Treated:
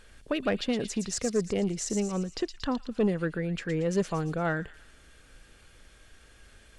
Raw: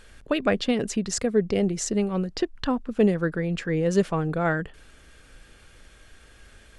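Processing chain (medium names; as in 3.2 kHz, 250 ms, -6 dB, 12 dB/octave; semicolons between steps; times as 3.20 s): feedback echo behind a high-pass 115 ms, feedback 52%, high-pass 3.8 kHz, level -4.5 dB; saturation -13 dBFS, distortion -20 dB; trim -4 dB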